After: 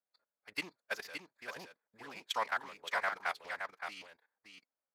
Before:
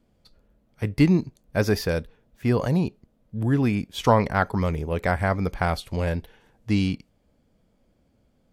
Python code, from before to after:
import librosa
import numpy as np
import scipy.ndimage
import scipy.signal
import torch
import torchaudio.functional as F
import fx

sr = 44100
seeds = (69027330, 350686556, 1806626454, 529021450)

y = fx.wiener(x, sr, points=15)
y = scipy.signal.sosfilt(scipy.signal.butter(2, 1400.0, 'highpass', fs=sr, output='sos'), y)
y = fx.level_steps(y, sr, step_db=17)
y = fx.stretch_vocoder(y, sr, factor=0.58)
y = y + 10.0 ** (-6.5 / 20.0) * np.pad(y, (int(569 * sr / 1000.0), 0))[:len(y)]
y = y * librosa.db_to_amplitude(3.0)